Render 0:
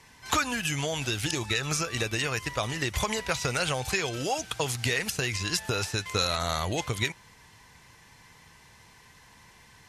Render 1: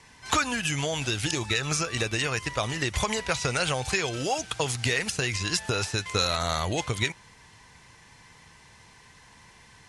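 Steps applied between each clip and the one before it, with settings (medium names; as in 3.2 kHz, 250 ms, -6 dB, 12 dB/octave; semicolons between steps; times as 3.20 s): steep low-pass 11 kHz 72 dB/octave; trim +1.5 dB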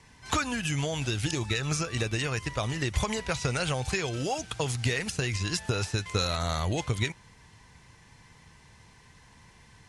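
bass shelf 300 Hz +7.5 dB; trim -4.5 dB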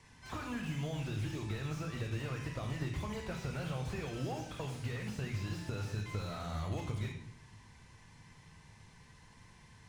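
compression 6:1, threshold -31 dBFS, peak gain reduction 10 dB; on a send at -5 dB: reverberation RT60 0.75 s, pre-delay 3 ms; on the sum: slew-rate limiter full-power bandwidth 24 Hz; trim -5.5 dB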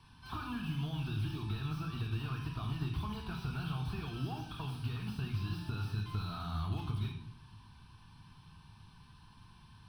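static phaser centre 2 kHz, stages 6; trim +2.5 dB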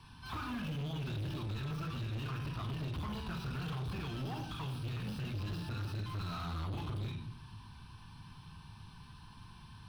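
saturation -40 dBFS, distortion -9 dB; trim +4.5 dB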